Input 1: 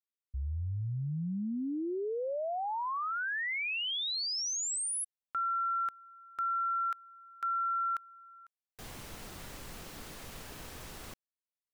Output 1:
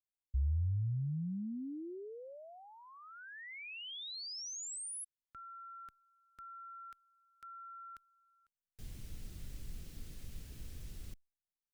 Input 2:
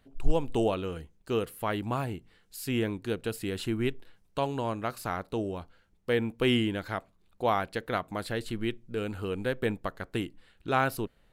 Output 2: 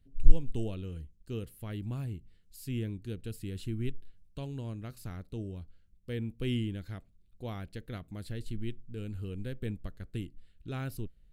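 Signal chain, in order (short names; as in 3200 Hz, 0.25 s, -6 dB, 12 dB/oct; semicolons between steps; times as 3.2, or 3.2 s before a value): passive tone stack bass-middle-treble 10-0-1; gain +11.5 dB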